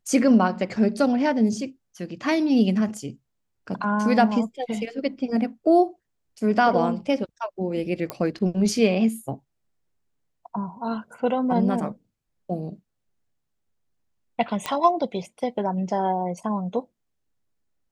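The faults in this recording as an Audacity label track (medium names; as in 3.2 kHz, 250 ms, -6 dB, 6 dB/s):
8.100000	8.100000	pop -13 dBFS
14.660000	14.660000	pop -11 dBFS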